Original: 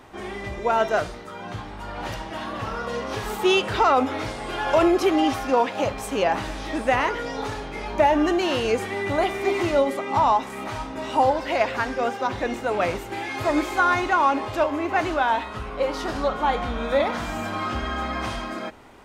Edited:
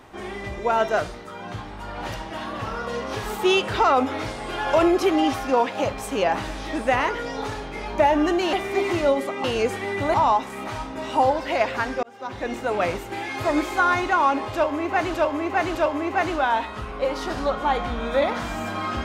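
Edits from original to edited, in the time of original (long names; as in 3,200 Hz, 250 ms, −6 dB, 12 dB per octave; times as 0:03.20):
0:08.53–0:09.23: move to 0:10.14
0:12.03–0:12.59: fade in
0:14.53–0:15.14: repeat, 3 plays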